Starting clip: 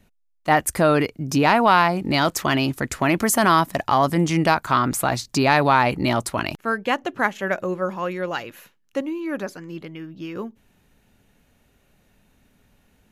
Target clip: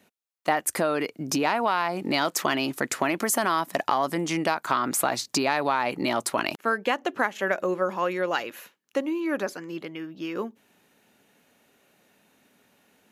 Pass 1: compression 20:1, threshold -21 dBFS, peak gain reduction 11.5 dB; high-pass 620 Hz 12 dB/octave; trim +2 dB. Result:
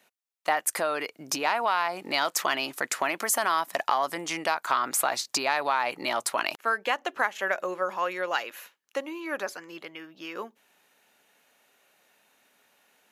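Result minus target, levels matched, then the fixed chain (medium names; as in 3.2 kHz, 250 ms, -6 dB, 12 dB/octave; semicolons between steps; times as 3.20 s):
250 Hz band -9.0 dB
compression 20:1, threshold -21 dBFS, peak gain reduction 11.5 dB; high-pass 270 Hz 12 dB/octave; trim +2 dB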